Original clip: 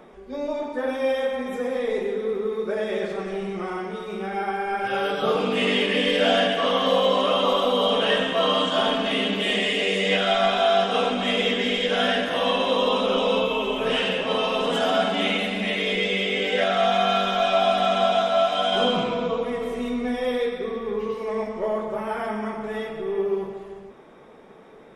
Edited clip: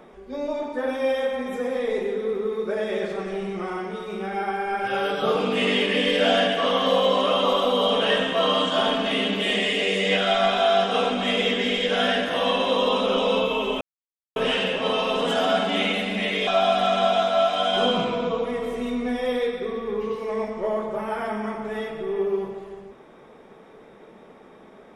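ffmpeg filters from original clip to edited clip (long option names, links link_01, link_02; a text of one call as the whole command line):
ffmpeg -i in.wav -filter_complex "[0:a]asplit=3[link_01][link_02][link_03];[link_01]atrim=end=13.81,asetpts=PTS-STARTPTS,afade=type=out:start_time=13.806:duration=0.004:curve=hsin,apad=pad_dur=0.55[link_04];[link_02]atrim=start=13.81:end=15.922,asetpts=PTS-STARTPTS,afade=type=in:duration=0.004:curve=hsin[link_05];[link_03]atrim=start=17.458[link_06];[link_04][link_05]concat=n=2:v=0:a=1[link_07];[link_07][link_06]acrossfade=duration=0.004:curve1=hsin:curve2=hsin" out.wav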